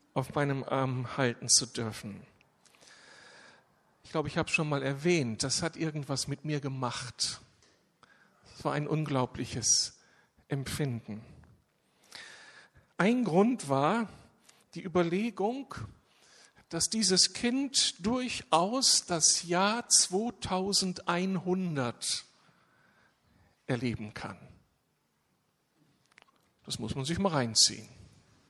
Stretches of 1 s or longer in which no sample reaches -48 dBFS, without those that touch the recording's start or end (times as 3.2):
22.24–23.68
24.51–26.06